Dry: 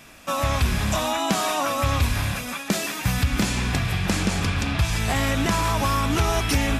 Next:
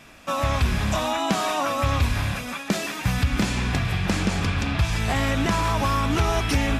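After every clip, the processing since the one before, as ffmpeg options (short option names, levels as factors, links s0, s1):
-af "highshelf=f=7100:g=-9"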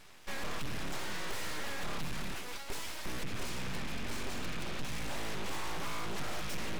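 -af "aeval=exprs='abs(val(0))':c=same,aeval=exprs='(tanh(8.91*val(0)+0.7)-tanh(0.7))/8.91':c=same,volume=0.841"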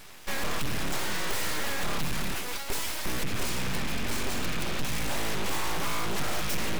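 -af "highshelf=f=11000:g=9.5,volume=2.37"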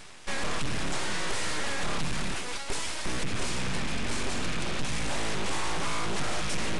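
-af "areverse,acompressor=mode=upward:threshold=0.0141:ratio=2.5,areverse,aresample=22050,aresample=44100"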